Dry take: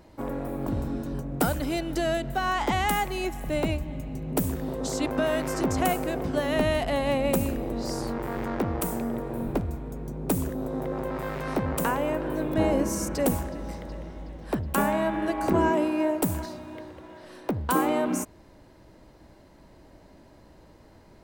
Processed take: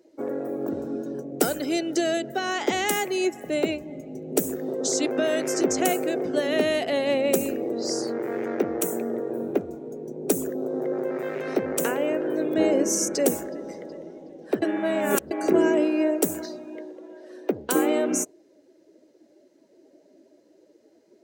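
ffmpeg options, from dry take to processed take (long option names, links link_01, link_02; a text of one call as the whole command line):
ffmpeg -i in.wav -filter_complex "[0:a]asettb=1/sr,asplit=3[link_01][link_02][link_03];[link_01]atrim=end=8.754[link_04];[link_02]atrim=start=8.75:end=9.7,asetpts=PTS-STARTPTS,afade=type=in:duration=0.004:curve=qsin,afade=type=out:start_time=0.946:duration=0.004:curve=qsin,bandreject=frequency=4800:width=14[link_05];[link_03]atrim=start=9.696[link_06];[link_04][link_05]acrossfade=duration=0.004:curve1=hsin:curve2=qsin[link_07];[link_07][link_06]acrossfade=duration=0.004:curve1=qsin:curve2=hsin,asplit=3[link_08][link_09][link_10];[link_08]atrim=end=14.622[link_11];[link_09]atrim=start=14.618:end=15.312,asetpts=PTS-STARTPTS,areverse[link_12];[link_10]atrim=start=15.308[link_13];[link_11][link_12]acrossfade=duration=0.004:curve1=hsin:curve2=hsin[link_14];[link_14][link_13]acrossfade=duration=0.004:curve1=hsin:curve2=hsin,highpass=300,afftdn=noise_reduction=14:noise_floor=-47,equalizer=frequency=400:width_type=o:width=0.67:gain=7,equalizer=frequency=1000:width_type=o:width=0.67:gain=-12,equalizer=frequency=6300:width_type=o:width=0.67:gain=9,volume=3dB" out.wav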